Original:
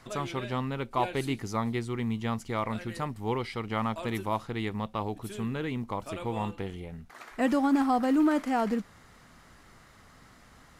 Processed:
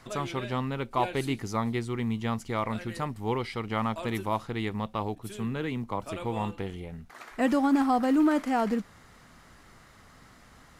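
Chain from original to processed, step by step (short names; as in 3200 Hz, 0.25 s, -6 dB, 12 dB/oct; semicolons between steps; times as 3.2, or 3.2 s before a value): 5.15–6.08 three-band expander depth 40%; gain +1 dB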